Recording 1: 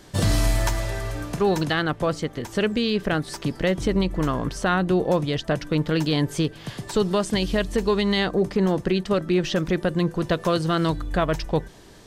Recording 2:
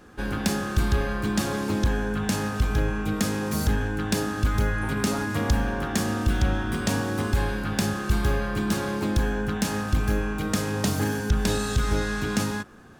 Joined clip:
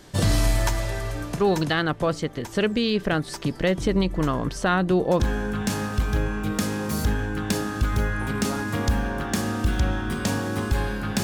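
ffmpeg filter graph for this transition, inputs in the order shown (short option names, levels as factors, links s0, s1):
-filter_complex "[0:a]apad=whole_dur=11.23,atrim=end=11.23,atrim=end=5.202[s0];[1:a]atrim=start=1.818:end=7.85[s1];[s0][s1]acrossfade=d=0.004:c1=hsin:c2=hsin"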